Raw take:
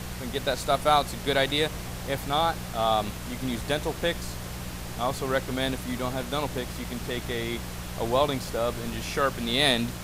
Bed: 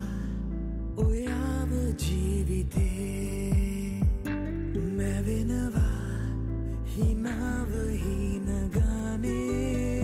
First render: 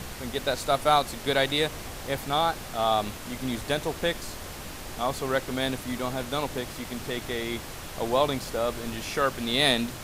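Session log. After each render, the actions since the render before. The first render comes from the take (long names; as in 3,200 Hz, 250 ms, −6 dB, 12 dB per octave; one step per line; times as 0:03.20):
hum removal 60 Hz, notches 3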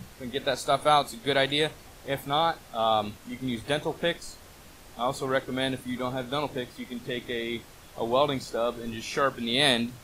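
noise reduction from a noise print 11 dB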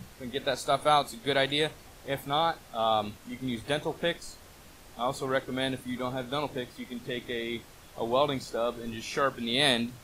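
level −2 dB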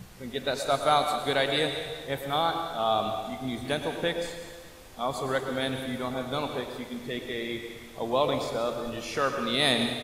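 repeating echo 198 ms, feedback 55%, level −16 dB
dense smooth reverb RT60 1.2 s, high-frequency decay 1×, pre-delay 90 ms, DRR 5.5 dB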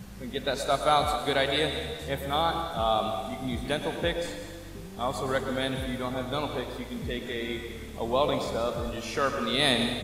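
mix in bed −13 dB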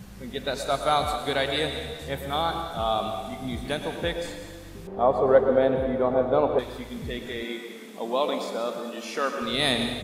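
0:04.87–0:06.59: drawn EQ curve 120 Hz 0 dB, 280 Hz +5 dB, 500 Hz +14 dB, 1,200 Hz +3 dB, 7,100 Hz −20 dB
0:07.43–0:09.42: linear-phase brick-wall high-pass 170 Hz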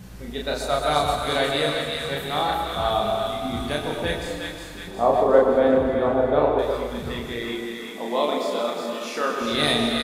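double-tracking delay 34 ms −2 dB
on a send: echo with a time of its own for lows and highs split 1,100 Hz, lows 125 ms, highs 362 ms, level −4.5 dB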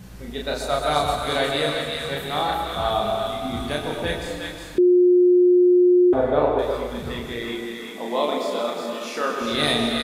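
0:04.78–0:06.13: beep over 358 Hz −11.5 dBFS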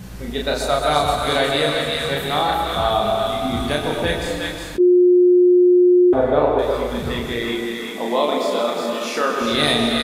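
in parallel at +0.5 dB: downward compressor, threshold −24 dBFS, peak gain reduction 10 dB
on the sum: level that may rise only so fast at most 470 dB per second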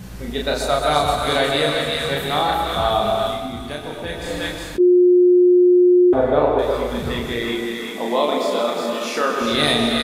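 0:03.27–0:04.38: duck −8 dB, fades 0.35 s quadratic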